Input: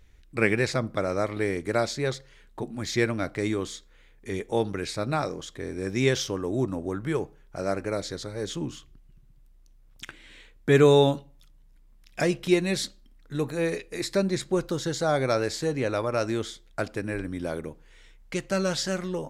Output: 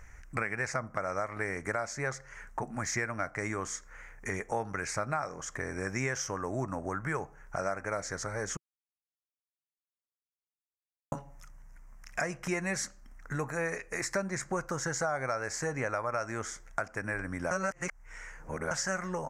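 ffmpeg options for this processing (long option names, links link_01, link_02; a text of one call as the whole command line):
ffmpeg -i in.wav -filter_complex "[0:a]asplit=5[link_01][link_02][link_03][link_04][link_05];[link_01]atrim=end=8.57,asetpts=PTS-STARTPTS,afade=type=out:start_time=8.566:duration=0.004:curve=hsin[link_06];[link_02]atrim=start=8.57:end=11.12,asetpts=PTS-STARTPTS,volume=0[link_07];[link_03]atrim=start=11.12:end=17.512,asetpts=PTS-STARTPTS,afade=type=in:duration=0.004:curve=hsin[link_08];[link_04]atrim=start=17.508:end=18.712,asetpts=PTS-STARTPTS,areverse[link_09];[link_05]atrim=start=18.708[link_10];[link_06][link_07][link_08]concat=n=3:v=0:a=1[link_11];[link_11][link_09]acrossfade=duration=0.004:curve1=hsin:curve2=hsin[link_12];[link_12][link_10]acrossfade=duration=0.004:curve1=hsin:curve2=hsin,firequalizer=gain_entry='entry(150,0);entry(340,-6);entry(680,7);entry(1400,11);entry(2000,8);entry(3600,-18);entry(5900,8);entry(11000,-2)':delay=0.05:min_phase=1,alimiter=limit=-11.5dB:level=0:latency=1:release=424,acompressor=threshold=-40dB:ratio=2.5,volume=4.5dB" out.wav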